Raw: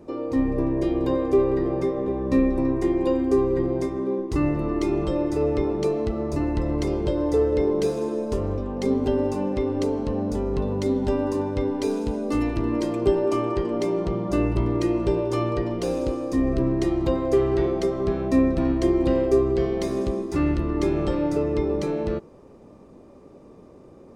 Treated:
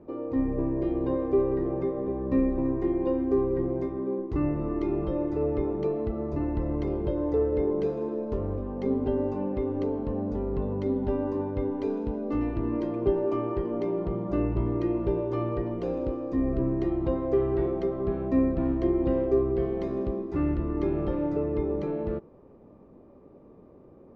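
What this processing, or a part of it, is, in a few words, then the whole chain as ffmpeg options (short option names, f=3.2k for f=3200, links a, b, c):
phone in a pocket: -af "lowpass=3.3k,highshelf=f=2.3k:g=-12,volume=-4dB"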